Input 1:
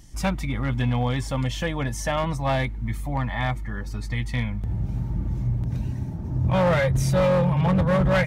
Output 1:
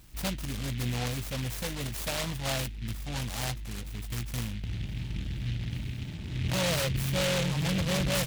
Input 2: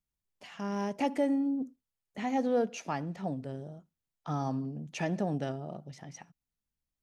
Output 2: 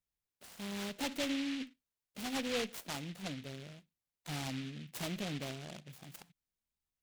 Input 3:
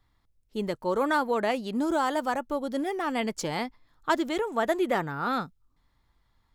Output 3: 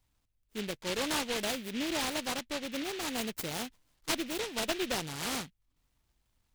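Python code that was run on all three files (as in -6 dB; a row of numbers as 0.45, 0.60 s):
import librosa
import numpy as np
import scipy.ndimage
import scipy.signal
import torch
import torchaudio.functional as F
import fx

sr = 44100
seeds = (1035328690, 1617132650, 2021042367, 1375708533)

y = fx.diode_clip(x, sr, knee_db=-22.5)
y = fx.high_shelf(y, sr, hz=5000.0, db=7.5)
y = fx.noise_mod_delay(y, sr, seeds[0], noise_hz=2600.0, depth_ms=0.21)
y = F.gain(torch.from_numpy(y), -6.0).numpy()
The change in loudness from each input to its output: -7.5, -6.5, -5.5 LU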